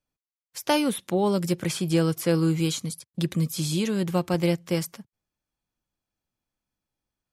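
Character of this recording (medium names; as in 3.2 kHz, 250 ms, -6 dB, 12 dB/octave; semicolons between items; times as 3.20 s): noise floor -96 dBFS; spectral tilt -5.5 dB/octave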